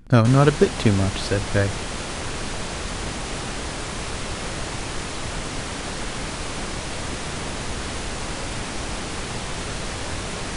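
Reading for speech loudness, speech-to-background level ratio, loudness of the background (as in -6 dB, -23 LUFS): -20.0 LUFS, 9.0 dB, -29.0 LUFS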